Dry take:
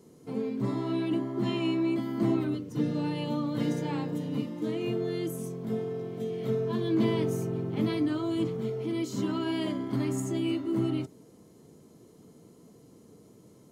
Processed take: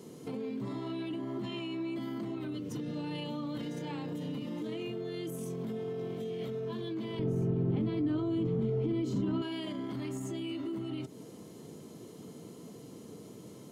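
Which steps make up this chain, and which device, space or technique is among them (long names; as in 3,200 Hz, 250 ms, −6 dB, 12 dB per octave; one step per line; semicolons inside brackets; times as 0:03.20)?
broadcast voice chain (high-pass filter 97 Hz; de-essing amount 90%; downward compressor 3 to 1, threshold −37 dBFS, peak gain reduction 11.5 dB; parametric band 3,100 Hz +5 dB 0.77 octaves; brickwall limiter −37 dBFS, peak gain reduction 10.5 dB)
0:07.19–0:09.42: spectral tilt −3.5 dB per octave
level +6.5 dB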